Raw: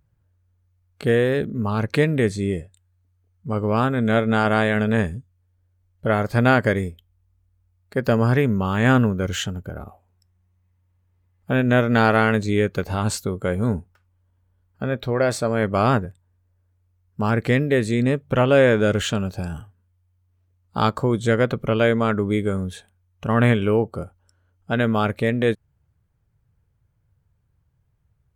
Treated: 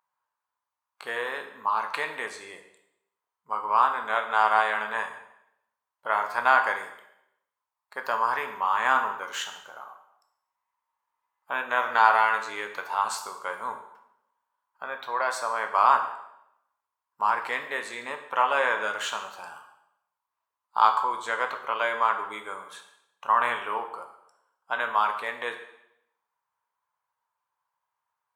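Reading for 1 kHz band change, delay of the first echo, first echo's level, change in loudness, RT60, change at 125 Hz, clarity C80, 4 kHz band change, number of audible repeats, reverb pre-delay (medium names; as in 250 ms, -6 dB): +3.5 dB, no echo, no echo, -5.0 dB, 0.80 s, under -40 dB, 11.5 dB, -5.0 dB, no echo, 6 ms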